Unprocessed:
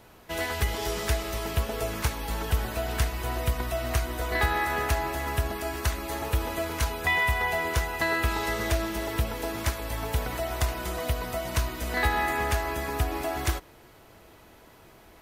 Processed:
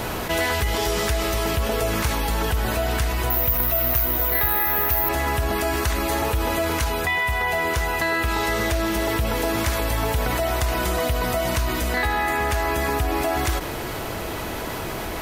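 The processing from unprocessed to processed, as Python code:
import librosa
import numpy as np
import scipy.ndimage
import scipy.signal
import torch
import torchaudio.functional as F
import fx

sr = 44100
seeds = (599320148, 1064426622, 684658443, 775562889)

y = fx.rider(x, sr, range_db=10, speed_s=0.5)
y = fx.resample_bad(y, sr, factor=3, down='filtered', up='zero_stuff', at=(3.3, 5.09))
y = fx.env_flatten(y, sr, amount_pct=70)
y = F.gain(torch.from_numpy(y), -3.5).numpy()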